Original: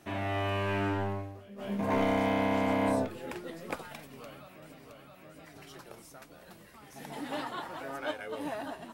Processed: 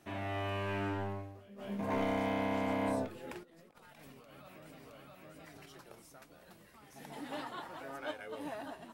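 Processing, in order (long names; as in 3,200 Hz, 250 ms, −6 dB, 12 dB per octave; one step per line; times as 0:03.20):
0:03.43–0:05.66: compressor whose output falls as the input rises −51 dBFS, ratio −1
level −5.5 dB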